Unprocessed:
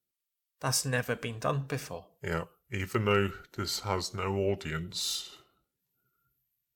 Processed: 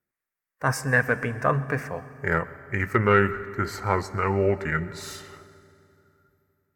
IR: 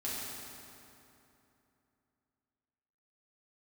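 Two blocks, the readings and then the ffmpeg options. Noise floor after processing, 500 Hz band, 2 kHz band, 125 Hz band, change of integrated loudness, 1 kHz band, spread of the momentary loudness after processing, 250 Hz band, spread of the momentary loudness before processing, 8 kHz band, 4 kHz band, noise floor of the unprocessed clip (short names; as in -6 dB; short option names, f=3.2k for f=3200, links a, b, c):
under -85 dBFS, +7.0 dB, +11.5 dB, +6.5 dB, +7.0 dB, +9.5 dB, 12 LU, +6.5 dB, 10 LU, -5.0 dB, -7.5 dB, under -85 dBFS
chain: -filter_complex "[0:a]highshelf=f=2.5k:t=q:w=3:g=-10.5,acontrast=68,asplit=2[a][b];[1:a]atrim=start_sample=2205,adelay=124[c];[b][c]afir=irnorm=-1:irlink=0,volume=-20dB[d];[a][d]amix=inputs=2:normalize=0"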